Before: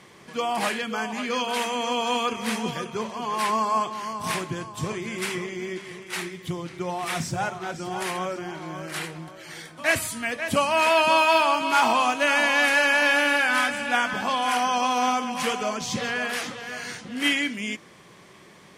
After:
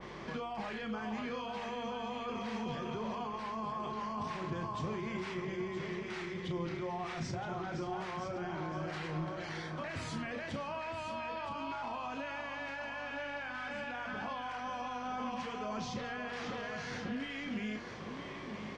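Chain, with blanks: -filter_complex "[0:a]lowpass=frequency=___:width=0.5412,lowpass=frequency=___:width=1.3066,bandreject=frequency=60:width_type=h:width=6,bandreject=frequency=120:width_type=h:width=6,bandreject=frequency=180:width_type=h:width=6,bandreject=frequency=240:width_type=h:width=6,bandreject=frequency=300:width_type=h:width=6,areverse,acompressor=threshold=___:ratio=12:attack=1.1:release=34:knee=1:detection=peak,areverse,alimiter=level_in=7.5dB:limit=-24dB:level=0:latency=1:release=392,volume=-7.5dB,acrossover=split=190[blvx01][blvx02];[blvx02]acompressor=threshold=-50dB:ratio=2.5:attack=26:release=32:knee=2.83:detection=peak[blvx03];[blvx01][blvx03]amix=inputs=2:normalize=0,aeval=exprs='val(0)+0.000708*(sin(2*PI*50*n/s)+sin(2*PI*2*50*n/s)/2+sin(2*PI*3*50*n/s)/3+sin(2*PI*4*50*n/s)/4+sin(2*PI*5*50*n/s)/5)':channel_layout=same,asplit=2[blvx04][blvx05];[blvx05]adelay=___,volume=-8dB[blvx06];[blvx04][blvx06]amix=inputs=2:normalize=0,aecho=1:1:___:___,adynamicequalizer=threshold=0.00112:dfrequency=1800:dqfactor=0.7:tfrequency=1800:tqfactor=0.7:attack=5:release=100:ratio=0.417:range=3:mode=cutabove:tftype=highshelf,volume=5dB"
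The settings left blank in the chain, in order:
5700, 5700, -33dB, 33, 969, 0.376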